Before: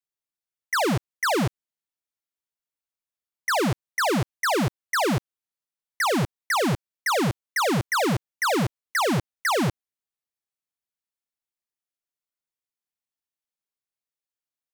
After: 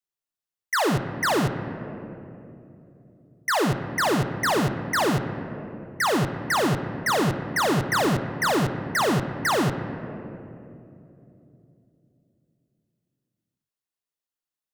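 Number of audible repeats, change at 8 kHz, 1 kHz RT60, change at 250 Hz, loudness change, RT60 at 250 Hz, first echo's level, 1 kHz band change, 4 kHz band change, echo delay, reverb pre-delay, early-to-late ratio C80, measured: no echo audible, 0.0 dB, 2.4 s, +1.0 dB, +0.5 dB, 4.0 s, no echo audible, +1.0 dB, 0.0 dB, no echo audible, 3 ms, 10.0 dB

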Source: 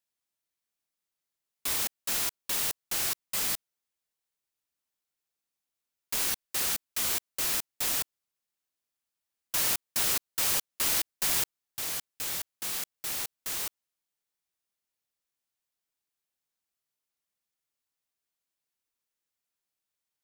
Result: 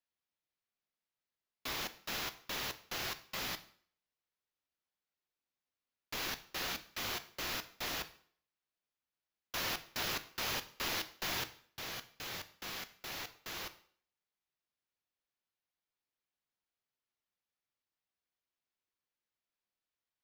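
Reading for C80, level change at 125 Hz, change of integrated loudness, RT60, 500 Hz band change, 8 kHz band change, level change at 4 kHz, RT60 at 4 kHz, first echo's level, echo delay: 18.5 dB, −2.0 dB, −10.5 dB, 0.55 s, −2.5 dB, −15.0 dB, −5.5 dB, 0.50 s, no echo audible, no echo audible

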